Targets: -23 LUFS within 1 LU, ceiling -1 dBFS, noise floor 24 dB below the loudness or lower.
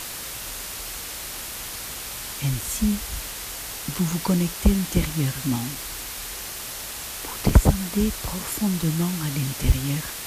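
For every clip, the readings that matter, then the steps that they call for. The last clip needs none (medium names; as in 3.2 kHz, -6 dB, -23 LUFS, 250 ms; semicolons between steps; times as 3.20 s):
dropouts 8; longest dropout 2.1 ms; noise floor -34 dBFS; noise floor target -50 dBFS; loudness -26.0 LUFS; peak level -3.0 dBFS; loudness target -23.0 LUFS
-> interpolate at 2.61/4.12/5.10/5.75/7.49/8.25/8.83/9.72 s, 2.1 ms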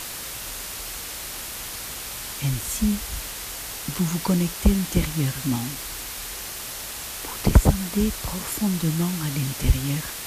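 dropouts 0; noise floor -34 dBFS; noise floor target -50 dBFS
-> noise reduction 16 dB, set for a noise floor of -34 dBFS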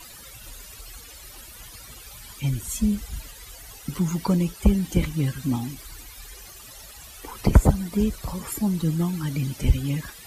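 noise floor -44 dBFS; noise floor target -49 dBFS
-> noise reduction 6 dB, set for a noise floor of -44 dBFS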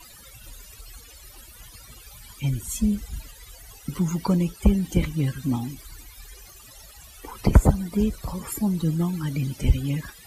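noise floor -47 dBFS; noise floor target -49 dBFS
-> noise reduction 6 dB, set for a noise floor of -47 dBFS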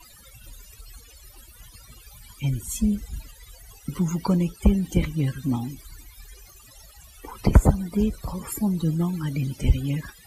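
noise floor -50 dBFS; loudness -25.0 LUFS; peak level -3.5 dBFS; loudness target -23.0 LUFS
-> trim +2 dB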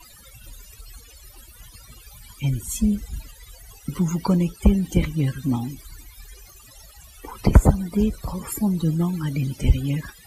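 loudness -23.0 LUFS; peak level -1.5 dBFS; noise floor -48 dBFS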